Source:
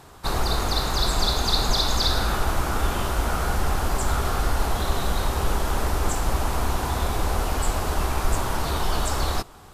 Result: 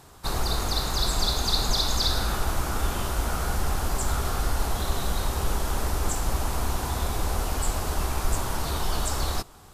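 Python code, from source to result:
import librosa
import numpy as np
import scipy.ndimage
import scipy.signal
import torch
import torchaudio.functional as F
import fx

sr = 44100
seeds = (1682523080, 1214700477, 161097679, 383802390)

y = fx.bass_treble(x, sr, bass_db=2, treble_db=5)
y = F.gain(torch.from_numpy(y), -4.5).numpy()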